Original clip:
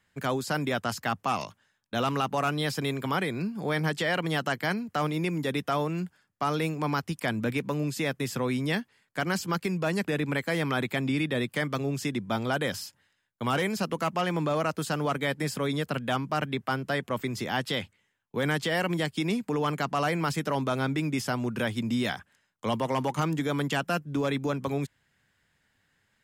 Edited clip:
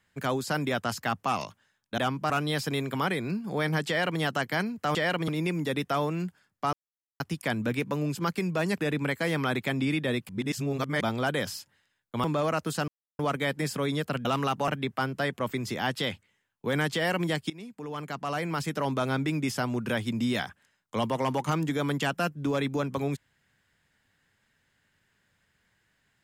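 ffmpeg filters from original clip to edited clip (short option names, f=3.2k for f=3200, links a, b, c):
-filter_complex "[0:a]asplit=15[a][b][c][d][e][f][g][h][i][j][k][l][m][n][o];[a]atrim=end=1.982[p];[b]atrim=start=16.058:end=16.382[q];[c]atrim=start=2.408:end=5.062[r];[d]atrim=start=3.988:end=4.322[s];[e]atrim=start=5.058:end=6.51,asetpts=PTS-STARTPTS,afade=t=out:st=1.448:d=0.004:c=hsin[t];[f]atrim=start=6.51:end=6.98,asetpts=PTS-STARTPTS,volume=0[u];[g]atrim=start=6.98:end=7.932,asetpts=PTS-STARTPTS,afade=t=in:d=0.004:c=hsin[v];[h]atrim=start=9.418:end=11.562[w];[i]atrim=start=11.558:end=12.282,asetpts=PTS-STARTPTS,areverse[x];[j]atrim=start=12.278:end=13.512[y];[k]atrim=start=14.358:end=15,asetpts=PTS-STARTPTS,afade=t=out:st=0.638:d=0.004:c=hsin,apad=pad_dur=0.31[z];[l]atrim=start=15:end=16.062,asetpts=PTS-STARTPTS,afade=t=in:d=0.004:c=hsin[aa];[m]atrim=start=1.978:end=2.412[ab];[n]atrim=start=16.378:end=19.2,asetpts=PTS-STARTPTS,afade=t=out:st=2.818:d=0.004:c=hsin:silence=0.105925[ac];[o]atrim=start=19.2,asetpts=PTS-STARTPTS,afade=t=in:d=1.47:silence=0.105925[ad];[p][q]acrossfade=d=0.004:c1=hsin:c2=hsin[ae];[ae][r]acrossfade=d=0.004:c1=hsin:c2=hsin[af];[af][s]acrossfade=d=0.004:c1=hsin:c2=hsin[ag];[t][u][v]concat=n=3:v=0:a=1[ah];[ag][ah]acrossfade=d=0.004:c1=hsin:c2=hsin[ai];[ai][w]acrossfade=d=0.004:c1=hsin:c2=hsin[aj];[aj][x]acrossfade=d=0.004:c1=hsin:c2=hsin[ak];[ak][y]acrossfade=d=0.004:c1=hsin:c2=hsin[al];[z][aa]concat=n=2:v=0:a=1[am];[al][am]acrossfade=d=0.004:c1=hsin:c2=hsin[an];[an][ab]acrossfade=d=0.004:c1=hsin:c2=hsin[ao];[ac][ad]concat=n=2:v=0:a=1[ap];[ao][ap]acrossfade=d=0.004:c1=hsin:c2=hsin"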